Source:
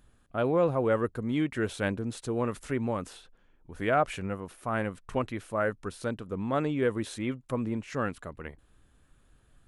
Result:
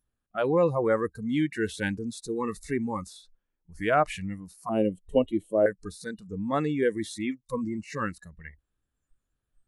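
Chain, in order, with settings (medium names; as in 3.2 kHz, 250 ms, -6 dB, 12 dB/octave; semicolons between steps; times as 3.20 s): spectral noise reduction 22 dB; 4.69–5.66 s: FFT filter 110 Hz 0 dB, 390 Hz +11 dB, 590 Hz +8 dB, 1.1 kHz -13 dB, 1.9 kHz -21 dB, 3.2 kHz +12 dB, 4.7 kHz -25 dB, 8 kHz -7 dB; trim +2.5 dB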